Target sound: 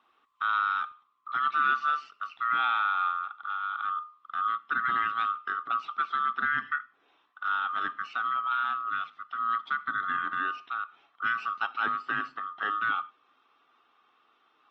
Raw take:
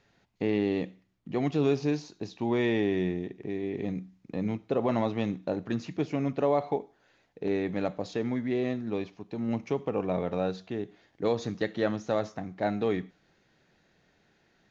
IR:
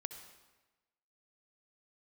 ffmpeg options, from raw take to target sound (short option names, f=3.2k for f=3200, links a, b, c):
-af "afftfilt=real='real(if(lt(b,960),b+48*(1-2*mod(floor(b/48),2)),b),0)':imag='imag(if(lt(b,960),b+48*(1-2*mod(floor(b/48),2)),b),0)':win_size=2048:overlap=0.75,highpass=220,equalizer=f=250:t=q:w=4:g=6,equalizer=f=550:t=q:w=4:g=-9,equalizer=f=1.1k:t=q:w=4:g=5,equalizer=f=1.7k:t=q:w=4:g=-7,equalizer=f=2.6k:t=q:w=4:g=5,lowpass=f=3.9k:w=0.5412,lowpass=f=3.9k:w=1.3066" -ar 48000 -c:a libopus -b:a 24k